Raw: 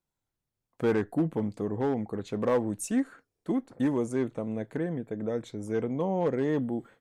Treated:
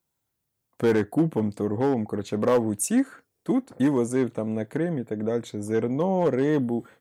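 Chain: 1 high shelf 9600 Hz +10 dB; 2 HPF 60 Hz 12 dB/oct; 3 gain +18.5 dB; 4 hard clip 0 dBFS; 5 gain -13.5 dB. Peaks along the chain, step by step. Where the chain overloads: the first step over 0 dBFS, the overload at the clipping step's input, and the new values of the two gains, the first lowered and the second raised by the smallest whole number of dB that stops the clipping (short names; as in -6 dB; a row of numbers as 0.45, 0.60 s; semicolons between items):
-16.0, -14.5, +4.0, 0.0, -13.5 dBFS; step 3, 4.0 dB; step 3 +14.5 dB, step 5 -9.5 dB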